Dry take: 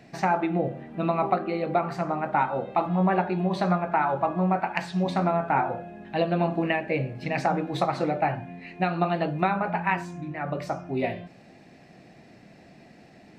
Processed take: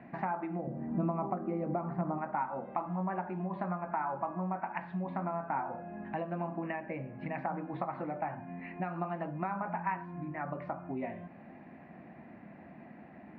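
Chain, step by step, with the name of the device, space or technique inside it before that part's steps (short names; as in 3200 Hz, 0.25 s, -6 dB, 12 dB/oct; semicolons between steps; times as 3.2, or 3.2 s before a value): bass amplifier (compressor 3:1, threshold -37 dBFS, peak gain reduction 14 dB; speaker cabinet 62–2100 Hz, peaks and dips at 120 Hz -7 dB, 230 Hz +4 dB, 440 Hz -7 dB, 1000 Hz +6 dB); 0.67–2.18 tilt shelf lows +8 dB, about 760 Hz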